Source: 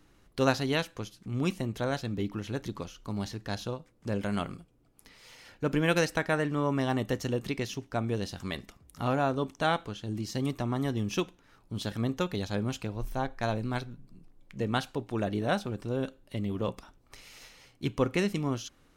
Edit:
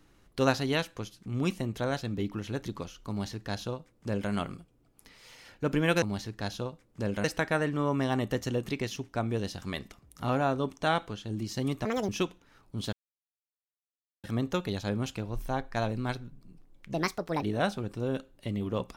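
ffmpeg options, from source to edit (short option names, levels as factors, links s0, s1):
-filter_complex "[0:a]asplit=8[s0][s1][s2][s3][s4][s5][s6][s7];[s0]atrim=end=6.022[s8];[s1]atrim=start=3.088:end=4.312[s9];[s2]atrim=start=6.018:end=10.634[s10];[s3]atrim=start=10.63:end=11.06,asetpts=PTS-STARTPTS,asetrate=80262,aresample=44100,atrim=end_sample=10419,asetpts=PTS-STARTPTS[s11];[s4]atrim=start=11.056:end=11.9,asetpts=PTS-STARTPTS,afade=t=out:st=0.84:d=0.004:c=hsin,apad=pad_dur=1.31[s12];[s5]atrim=start=11.9:end=14.604,asetpts=PTS-STARTPTS,afade=t=in:d=0.004:c=hsin[s13];[s6]atrim=start=14.6:end=15.31,asetpts=PTS-STARTPTS,asetrate=63945,aresample=44100[s14];[s7]atrim=start=15.306[s15];[s8][s9]acrossfade=d=0.004:c1=hsin:c2=hsin[s16];[s16][s10]acrossfade=d=0.004:c1=hsin:c2=hsin[s17];[s17][s11]acrossfade=d=0.004:c1=hsin:c2=hsin[s18];[s12][s13]concat=n=2:v=0:a=1[s19];[s18][s19]acrossfade=d=0.004:c1=hsin:c2=hsin[s20];[s20][s14]acrossfade=d=0.004:c1=hsin:c2=hsin[s21];[s21][s15]acrossfade=d=0.004:c1=hsin:c2=hsin"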